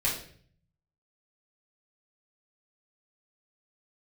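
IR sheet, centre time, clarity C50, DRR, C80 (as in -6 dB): 33 ms, 5.5 dB, -6.5 dB, 9.5 dB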